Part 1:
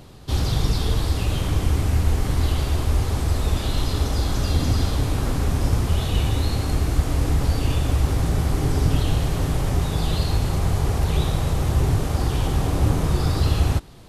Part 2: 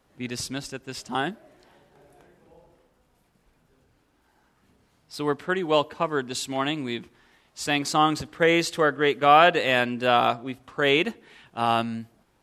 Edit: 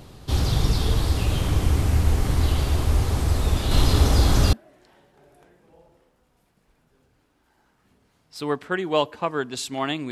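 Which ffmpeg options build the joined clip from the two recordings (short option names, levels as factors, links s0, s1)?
-filter_complex "[0:a]asettb=1/sr,asplit=3[s0][s1][s2];[s0]atrim=end=3.714[s3];[s1]atrim=start=3.71:end=4.53,asetpts=PTS-STARTPTS,afade=t=in:d=0.004:c=qsin,afade=t=out:st=0.816:d=0.004:c=qsin,acontrast=22[s4];[s2]atrim=start=4.526[s5];[s3][s4]acrossfade=d=0.004:c1=hsin:c2=qsin[s6];[s6][s5]acrossfade=d=0.004:c1=qsin:c2=hsin,apad=whole_dur=10.11,atrim=end=10.11,atrim=end=4.532[s7];[1:a]atrim=start=1.308:end=6.89[s8];[s7][s8]acrossfade=d=0.004:c1=hsin:c2=hsin"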